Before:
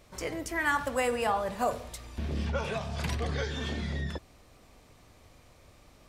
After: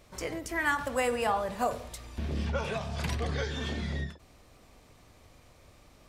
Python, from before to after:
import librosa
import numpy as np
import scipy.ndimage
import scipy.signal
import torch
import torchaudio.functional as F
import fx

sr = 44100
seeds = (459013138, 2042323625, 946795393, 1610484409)

y = fx.end_taper(x, sr, db_per_s=160.0)